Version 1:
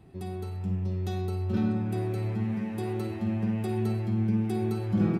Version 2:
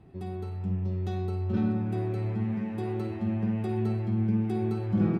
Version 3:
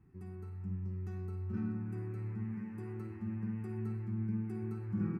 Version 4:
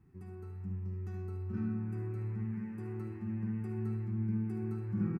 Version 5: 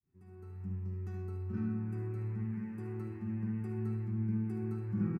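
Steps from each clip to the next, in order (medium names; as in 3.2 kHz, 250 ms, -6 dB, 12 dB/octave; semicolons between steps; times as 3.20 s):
low-pass 2.6 kHz 6 dB/octave
static phaser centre 1.5 kHz, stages 4; trim -8.5 dB
delay 73 ms -9 dB
fade-in on the opening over 0.66 s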